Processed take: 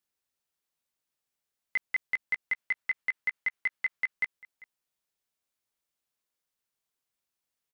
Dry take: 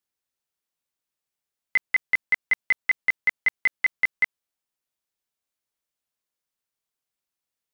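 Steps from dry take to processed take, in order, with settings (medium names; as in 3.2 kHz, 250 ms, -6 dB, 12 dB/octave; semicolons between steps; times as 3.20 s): 2.42–4.13 s: dynamic bell 1.7 kHz, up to +7 dB, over -32 dBFS, Q 0.71; peak limiter -21.5 dBFS, peak gain reduction 14.5 dB; delay 395 ms -22.5 dB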